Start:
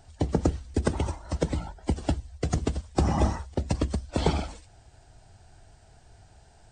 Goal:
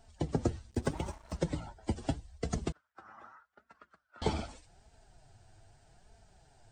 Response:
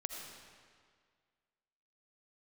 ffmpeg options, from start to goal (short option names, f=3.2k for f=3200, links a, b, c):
-filter_complex "[0:a]flanger=delay=4.4:depth=4.8:regen=26:speed=0.81:shape=sinusoidal,asettb=1/sr,asplit=3[a][b][c];[a]atrim=end=0.704[d];[b]atrim=start=0.7:end=1.38,asetpts=PTS-STARTPTS,afade=t=in:d=0.004:c=qsin,afade=t=out:st=0.676:d=0.004:c=qsin,aeval=exprs='sgn(val(0))*max(abs(val(0))-0.00299,0)':c=same[e];[c]atrim=start=1.376[f];[d][e]acrossfade=d=0.004:c1=hsin:c2=qsin[g];[g][f]acrossfade=d=0.004:c1=qsin:c2=hsin,asettb=1/sr,asplit=3[h][i][j];[h]atrim=end=2.724[k];[i]atrim=start=2.72:end=4.22,asetpts=PTS-STARTPTS,afade=t=in:d=0.004:c=qsin,afade=t=out:st=1.496:d=0.004:c=qsin,bandpass=f=1.4k:t=q:w=8.2:csg=0[l];[j]atrim=start=4.216[m];[k][l]acrossfade=d=0.004:c1=hsin:c2=qsin[n];[n][m]acrossfade=d=0.004:c1=qsin:c2=hsin,volume=-2.5dB"